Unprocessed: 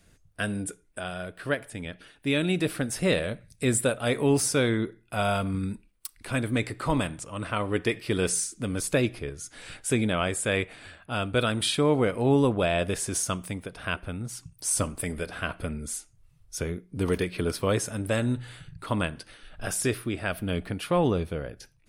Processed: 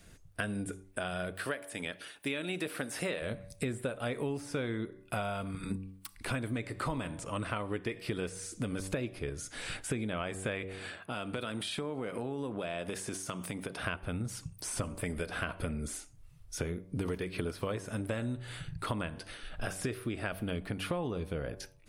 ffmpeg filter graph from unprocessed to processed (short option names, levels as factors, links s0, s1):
-filter_complex "[0:a]asettb=1/sr,asplit=3[s0][s1][s2];[s0]atrim=end=1.354[s3];[s1]atrim=start=1.35:end=3.22,asetpts=PTS-STARTPTS,afade=t=in:d=0.004:c=qsin,afade=t=out:st=1.866:d=0.004:c=qsin,highpass=f=470:p=1,highshelf=f=7000:g=7.5[s4];[s2]atrim=start=3.216[s5];[s3][s4]acrossfade=d=0.004:c1=hsin:c2=qsin[s6];[s6][s5]acrossfade=d=0.004:c1=qsin:c2=hsin,asettb=1/sr,asplit=3[s7][s8][s9];[s7]atrim=end=10.804[s10];[s8]atrim=start=10.8:end=13.82,asetpts=PTS-STARTPTS,afade=t=in:d=0.004:c=qsin,afade=t=out:st=3.016:d=0.004:c=qsin,highpass=140,acompressor=threshold=0.0158:ratio=4:attack=3.2:release=140:knee=1:detection=peak[s11];[s9]atrim=start=13.816[s12];[s10][s11]acrossfade=d=0.004:c1=hsin:c2=qsin[s13];[s13][s12]acrossfade=d=0.004:c1=qsin:c2=hsin,acrossover=split=3200[s14][s15];[s15]acompressor=threshold=0.00794:ratio=4:attack=1:release=60[s16];[s14][s16]amix=inputs=2:normalize=0,bandreject=f=95.34:t=h:w=4,bandreject=f=190.68:t=h:w=4,bandreject=f=286.02:t=h:w=4,bandreject=f=381.36:t=h:w=4,bandreject=f=476.7:t=h:w=4,bandreject=f=572.04:t=h:w=4,bandreject=f=667.38:t=h:w=4,bandreject=f=762.72:t=h:w=4,bandreject=f=858.06:t=h:w=4,bandreject=f=953.4:t=h:w=4,bandreject=f=1048.74:t=h:w=4,bandreject=f=1144.08:t=h:w=4,acompressor=threshold=0.0178:ratio=12,volume=1.5"